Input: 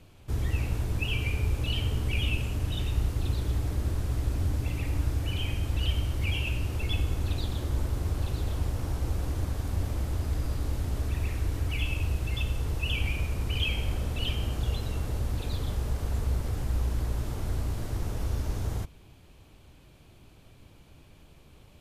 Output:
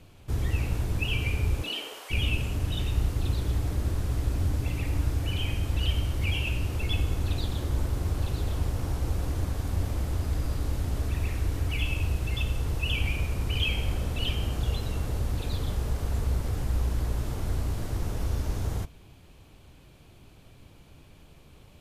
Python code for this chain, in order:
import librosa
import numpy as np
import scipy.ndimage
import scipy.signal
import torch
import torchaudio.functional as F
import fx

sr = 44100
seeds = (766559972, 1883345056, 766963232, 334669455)

y = fx.highpass(x, sr, hz=fx.line((1.61, 210.0), (2.1, 650.0)), slope=24, at=(1.61, 2.1), fade=0.02)
y = fx.rev_double_slope(y, sr, seeds[0], early_s=0.31, late_s=1.6, knee_db=-27, drr_db=19.0)
y = y * 10.0 ** (1.5 / 20.0)